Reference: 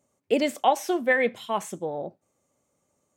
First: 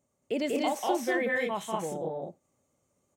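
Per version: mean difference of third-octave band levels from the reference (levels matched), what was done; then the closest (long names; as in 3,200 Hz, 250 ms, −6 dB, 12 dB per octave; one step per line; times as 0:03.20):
7.5 dB: brickwall limiter −16 dBFS, peak gain reduction 7.5 dB
low-shelf EQ 190 Hz +5.5 dB
loudspeakers that aren't time-aligned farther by 65 metres −2 dB, 76 metres −2 dB
level −6 dB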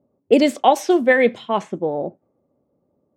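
3.0 dB: parametric band 300 Hz +6.5 dB 2.1 octaves
low-pass that shuts in the quiet parts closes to 690 Hz, open at −16 dBFS
dynamic equaliser 4,200 Hz, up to +4 dB, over −42 dBFS, Q 1.4
level +4 dB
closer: second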